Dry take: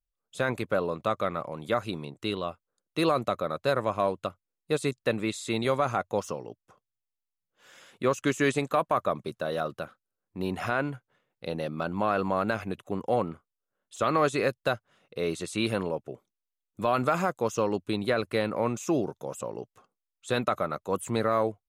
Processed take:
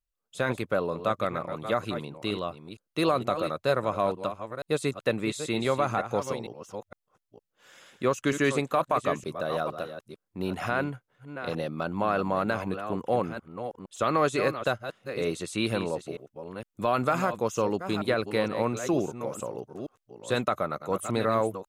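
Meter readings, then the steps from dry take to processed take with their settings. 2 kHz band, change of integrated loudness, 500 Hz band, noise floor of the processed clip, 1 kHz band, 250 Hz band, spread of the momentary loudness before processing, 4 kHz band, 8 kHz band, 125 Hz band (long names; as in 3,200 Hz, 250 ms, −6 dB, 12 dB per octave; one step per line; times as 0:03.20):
+0.5 dB, 0.0 dB, +0.5 dB, −84 dBFS, +0.5 dB, +0.5 dB, 11 LU, +0.5 dB, +0.5 dB, +0.5 dB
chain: delay that plays each chunk backwards 462 ms, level −9.5 dB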